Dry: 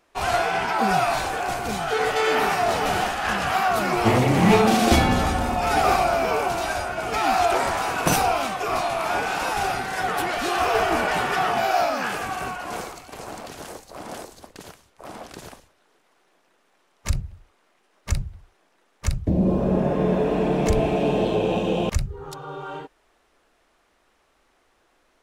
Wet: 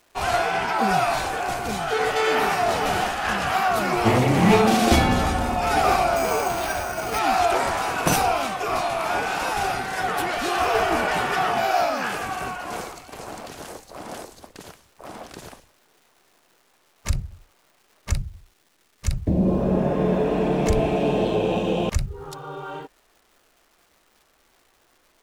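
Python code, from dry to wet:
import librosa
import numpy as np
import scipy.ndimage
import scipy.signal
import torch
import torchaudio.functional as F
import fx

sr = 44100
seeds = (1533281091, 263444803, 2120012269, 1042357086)

y = fx.resample_bad(x, sr, factor=6, down='none', up='hold', at=(6.16, 7.19))
y = fx.peak_eq(y, sr, hz=860.0, db=-7.5, octaves=2.5, at=(18.17, 19.11))
y = fx.dmg_crackle(y, sr, seeds[0], per_s=600.0, level_db=-49.0)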